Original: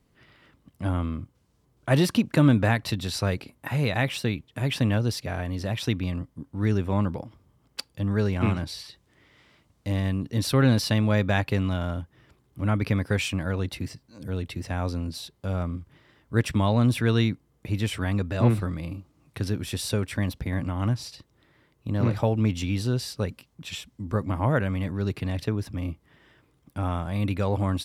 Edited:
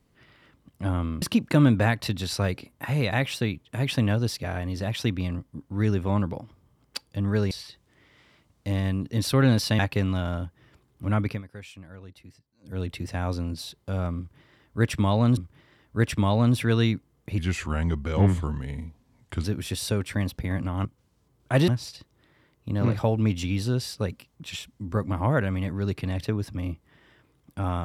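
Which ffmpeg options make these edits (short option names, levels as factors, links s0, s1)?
-filter_complex "[0:a]asplit=11[s0][s1][s2][s3][s4][s5][s6][s7][s8][s9][s10];[s0]atrim=end=1.222[s11];[s1]atrim=start=2.048:end=8.342[s12];[s2]atrim=start=8.708:end=10.992[s13];[s3]atrim=start=11.348:end=12.98,asetpts=PTS-STARTPTS,afade=t=out:st=1.442:d=0.19:silence=0.141254[s14];[s4]atrim=start=12.98:end=14.17,asetpts=PTS-STARTPTS,volume=0.141[s15];[s5]atrim=start=14.17:end=16.932,asetpts=PTS-STARTPTS,afade=t=in:d=0.19:silence=0.141254[s16];[s6]atrim=start=15.738:end=17.754[s17];[s7]atrim=start=17.75:end=19.46,asetpts=PTS-STARTPTS,asetrate=36603,aresample=44100[s18];[s8]atrim=start=19.456:end=20.872[s19];[s9]atrim=start=1.218:end=2.052[s20];[s10]atrim=start=20.868[s21];[s11][s12]acrossfade=d=0.004:c1=hsin:c2=hsin[s22];[s22][s13]acrossfade=d=0.004:c1=hsin:c2=hsin[s23];[s14][s15][s16]concat=n=3:v=0:a=1[s24];[s23][s24]acrossfade=d=0.004:c1=hsin:c2=hsin[s25];[s25][s17]acrossfade=d=0.004:c1=hsin:c2=hsin[s26];[s26][s18]acrossfade=d=0.004:c1=hsin:c2=hsin[s27];[s27][s19]acrossfade=d=0.004:c1=hsin:c2=hsin[s28];[s28][s20]acrossfade=d=0.004:c1=hsin:c2=hsin[s29];[s29][s21]acrossfade=d=0.004:c1=hsin:c2=hsin"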